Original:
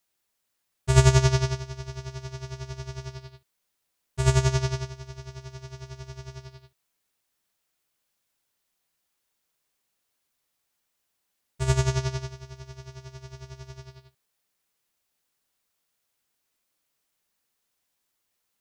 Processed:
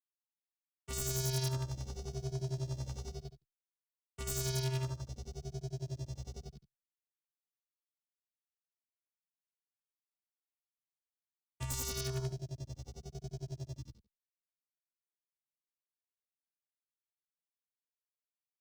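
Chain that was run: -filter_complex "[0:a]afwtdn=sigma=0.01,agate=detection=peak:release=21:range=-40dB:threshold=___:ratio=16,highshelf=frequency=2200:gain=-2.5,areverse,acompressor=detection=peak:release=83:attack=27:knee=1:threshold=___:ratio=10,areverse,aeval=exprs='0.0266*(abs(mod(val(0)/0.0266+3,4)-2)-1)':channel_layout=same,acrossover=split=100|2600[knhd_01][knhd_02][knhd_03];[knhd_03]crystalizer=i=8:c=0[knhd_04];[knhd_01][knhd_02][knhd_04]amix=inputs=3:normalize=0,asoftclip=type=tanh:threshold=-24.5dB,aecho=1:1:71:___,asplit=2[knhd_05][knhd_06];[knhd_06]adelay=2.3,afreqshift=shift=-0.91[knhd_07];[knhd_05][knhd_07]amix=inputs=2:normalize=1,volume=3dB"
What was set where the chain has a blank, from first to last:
-48dB, -35dB, 0.211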